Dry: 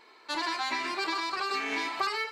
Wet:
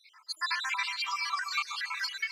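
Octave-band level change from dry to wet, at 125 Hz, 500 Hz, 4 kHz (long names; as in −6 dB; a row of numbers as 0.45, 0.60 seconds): can't be measured, below −30 dB, 0.0 dB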